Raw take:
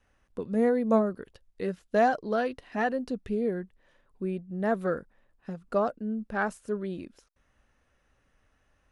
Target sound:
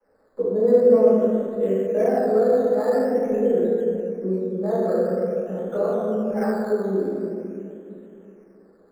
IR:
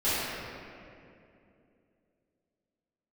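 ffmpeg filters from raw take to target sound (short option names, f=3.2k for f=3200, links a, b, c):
-filter_complex "[0:a]acrossover=split=150 2100:gain=0.112 1 0.178[a][b][c];[a][b][c]amix=inputs=3:normalize=0,acrossover=split=180|3000[d][e][f];[e]acompressor=threshold=-38dB:ratio=3[g];[d][g][f]amix=inputs=3:normalize=0,equalizer=f=480:t=o:w=0.49:g=12.5[h];[1:a]atrim=start_sample=2205[i];[h][i]afir=irnorm=-1:irlink=0,acrossover=split=100|1700[j][k][l];[l]acrusher=samples=12:mix=1:aa=0.000001:lfo=1:lforange=7.2:lforate=0.47[m];[j][k][m]amix=inputs=3:normalize=0,volume=-3.5dB"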